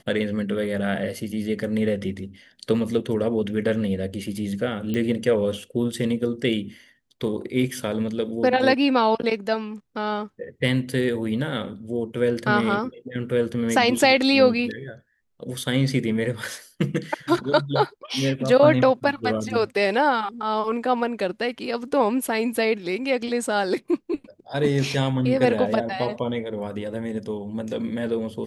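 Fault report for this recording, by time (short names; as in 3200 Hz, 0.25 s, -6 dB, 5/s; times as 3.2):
4.94 pop -15 dBFS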